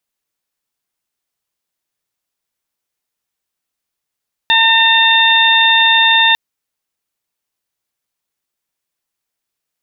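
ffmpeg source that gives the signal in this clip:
-f lavfi -i "aevalsrc='0.178*sin(2*PI*906*t)+0.224*sin(2*PI*1812*t)+0.158*sin(2*PI*2718*t)+0.282*sin(2*PI*3624*t)':d=1.85:s=44100"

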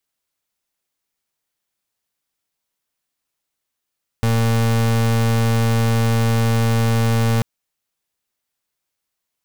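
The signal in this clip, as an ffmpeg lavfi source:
-f lavfi -i "aevalsrc='0.15*(2*lt(mod(114*t,1),0.35)-1)':d=3.19:s=44100"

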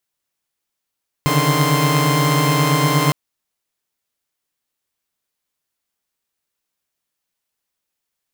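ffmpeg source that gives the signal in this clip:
-f lavfi -i "aevalsrc='0.141*((2*mod(138.59*t,1)-1)+(2*mod(146.83*t,1)-1)+(2*mod(155.56*t,1)-1)+(2*mod(1046.5*t,1)-1))':d=1.86:s=44100"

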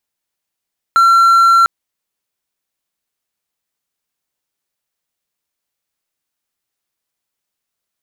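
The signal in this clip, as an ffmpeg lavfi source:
-f lavfi -i "aevalsrc='0.631*(1-4*abs(mod(1360*t+0.25,1)-0.5))':d=0.7:s=44100"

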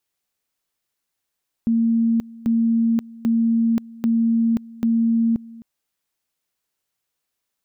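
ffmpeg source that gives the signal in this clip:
-f lavfi -i "aevalsrc='pow(10,(-15-21.5*gte(mod(t,0.79),0.53))/20)*sin(2*PI*229*t)':d=3.95:s=44100"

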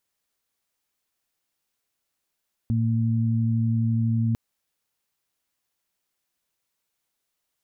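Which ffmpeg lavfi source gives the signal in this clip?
-f lavfi -i "aevalsrc='0.0891*sin(2*PI*114*t)+0.0562*sin(2*PI*228*t)':d=1.65:s=44100"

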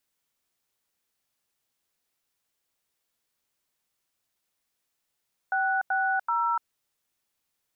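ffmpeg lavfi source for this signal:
-f lavfi -i "aevalsrc='0.0531*clip(min(mod(t,0.382),0.294-mod(t,0.382))/0.002,0,1)*(eq(floor(t/0.382),0)*(sin(2*PI*770*mod(t,0.382))+sin(2*PI*1477*mod(t,0.382)))+eq(floor(t/0.382),1)*(sin(2*PI*770*mod(t,0.382))+sin(2*PI*1477*mod(t,0.382)))+eq(floor(t/0.382),2)*(sin(2*PI*941*mod(t,0.382))+sin(2*PI*1336*mod(t,0.382))))':d=1.146:s=44100"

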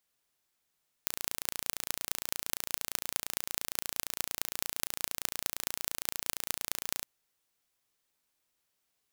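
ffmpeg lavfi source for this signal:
-f lavfi -i "aevalsrc='0.841*eq(mod(n,1537),0)*(0.5+0.5*eq(mod(n,9222),0))':d=5.98:s=44100"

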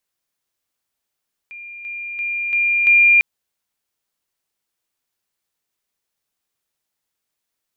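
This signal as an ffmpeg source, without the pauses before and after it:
-f lavfi -i "aevalsrc='pow(10,(-32.5+6*floor(t/0.34))/20)*sin(2*PI*2400*t)':d=1.7:s=44100"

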